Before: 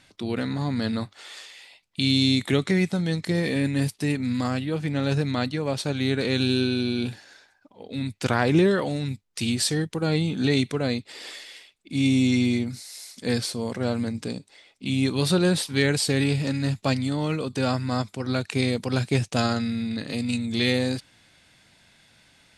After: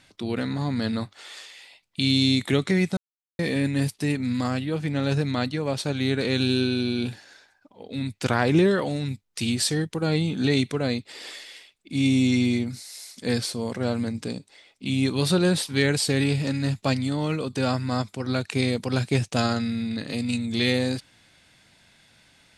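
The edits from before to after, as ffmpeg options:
-filter_complex "[0:a]asplit=3[a][b][c];[a]atrim=end=2.97,asetpts=PTS-STARTPTS,afade=t=out:st=2.966:d=0.004:c=hsin[d];[b]atrim=start=2.97:end=3.39,asetpts=PTS-STARTPTS,volume=0[e];[c]atrim=start=3.39,asetpts=PTS-STARTPTS,afade=t=in:d=0.004:c=hsin[f];[d][e][f]concat=n=3:v=0:a=1"

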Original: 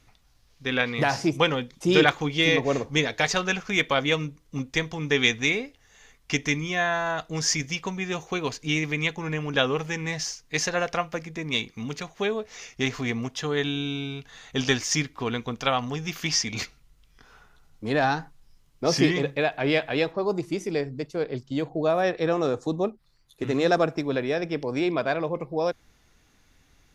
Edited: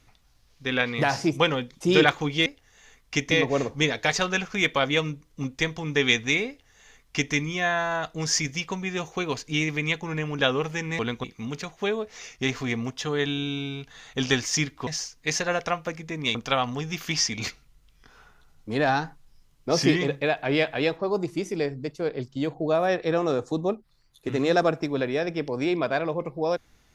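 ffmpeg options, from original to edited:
-filter_complex "[0:a]asplit=7[a][b][c][d][e][f][g];[a]atrim=end=2.462[h];[b]atrim=start=5.628:end=6.482[i];[c]atrim=start=2.458:end=10.142[j];[d]atrim=start=15.248:end=15.502[k];[e]atrim=start=11.618:end=15.252[l];[f]atrim=start=10.138:end=11.622[m];[g]atrim=start=15.498[n];[h][i]acrossfade=d=0.004:c1=hsin:c2=hsin[o];[o][j]acrossfade=d=0.004:c1=hsin:c2=hsin[p];[p][k]acrossfade=d=0.004:c1=hsin:c2=hsin[q];[q][l]acrossfade=d=0.004:c1=hsin:c2=hsin[r];[r][m]acrossfade=d=0.004:c1=hsin:c2=hsin[s];[s][n]acrossfade=d=0.004:c1=hsin:c2=hsin"

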